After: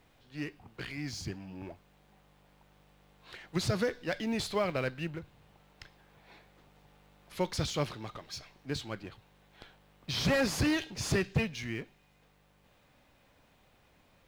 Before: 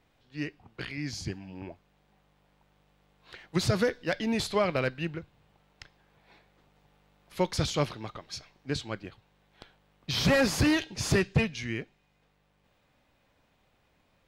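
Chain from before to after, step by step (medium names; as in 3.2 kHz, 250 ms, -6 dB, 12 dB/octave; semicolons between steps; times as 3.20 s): companding laws mixed up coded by mu; trim -5 dB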